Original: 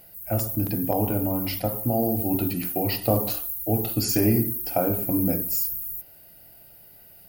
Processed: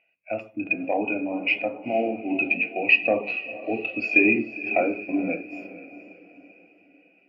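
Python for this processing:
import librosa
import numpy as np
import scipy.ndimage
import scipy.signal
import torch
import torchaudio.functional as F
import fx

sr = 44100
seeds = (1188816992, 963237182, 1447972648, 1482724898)

y = scipy.signal.sosfilt(scipy.signal.butter(2, 300.0, 'highpass', fs=sr, output='sos'), x)
y = 10.0 ** (-13.5 / 20.0) * np.tanh(y / 10.0 ** (-13.5 / 20.0))
y = fx.lowpass_res(y, sr, hz=2500.0, q=15.0)
y = fx.echo_diffused(y, sr, ms=466, feedback_pct=58, wet_db=-9.5)
y = fx.spectral_expand(y, sr, expansion=1.5)
y = F.gain(torch.from_numpy(y), 3.5).numpy()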